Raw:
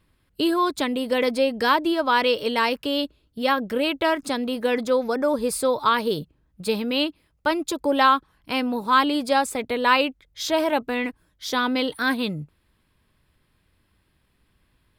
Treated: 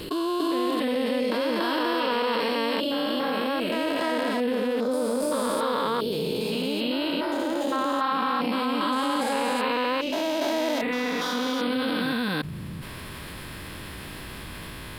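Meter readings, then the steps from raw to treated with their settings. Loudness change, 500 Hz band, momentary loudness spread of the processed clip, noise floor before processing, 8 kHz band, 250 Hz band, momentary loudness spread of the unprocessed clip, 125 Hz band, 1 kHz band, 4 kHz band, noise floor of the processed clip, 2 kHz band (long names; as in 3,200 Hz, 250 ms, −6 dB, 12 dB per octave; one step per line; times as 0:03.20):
−3.0 dB, −2.0 dB, 13 LU, −68 dBFS, −3.5 dB, −1.0 dB, 8 LU, +3.0 dB, −4.5 dB, −2.5 dB, −38 dBFS, −4.5 dB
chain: spectrum averaged block by block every 400 ms
low-shelf EQ 110 Hz −8.5 dB
tape wow and flutter 19 cents
backwards echo 287 ms −3.5 dB
envelope flattener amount 70%
level −2 dB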